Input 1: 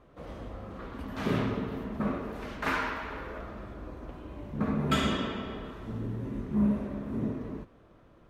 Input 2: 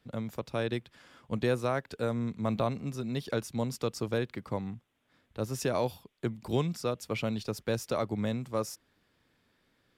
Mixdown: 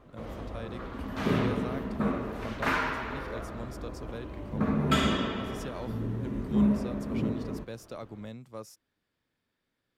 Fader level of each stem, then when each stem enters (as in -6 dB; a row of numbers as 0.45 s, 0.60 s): +2.0 dB, -10.5 dB; 0.00 s, 0.00 s